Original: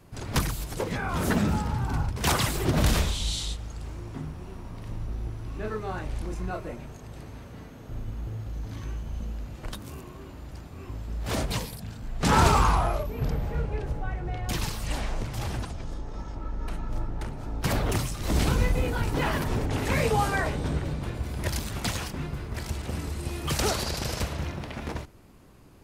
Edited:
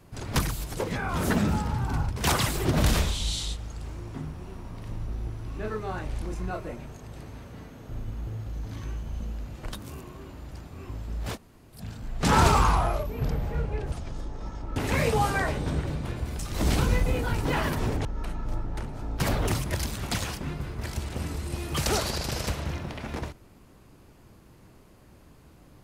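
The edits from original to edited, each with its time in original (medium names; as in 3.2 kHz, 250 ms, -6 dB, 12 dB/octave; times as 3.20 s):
11.33–11.77 s: room tone, crossfade 0.10 s
13.92–15.65 s: delete
16.49–18.08 s: swap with 19.74–21.37 s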